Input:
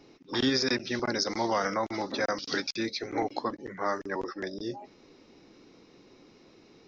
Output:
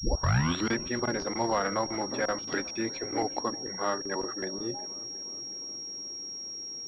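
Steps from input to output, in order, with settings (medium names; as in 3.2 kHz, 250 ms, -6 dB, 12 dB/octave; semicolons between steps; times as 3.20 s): tape start-up on the opening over 0.78 s; filtered feedback delay 362 ms, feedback 76%, low-pass 1.6 kHz, level -19.5 dB; class-D stage that switches slowly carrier 5.6 kHz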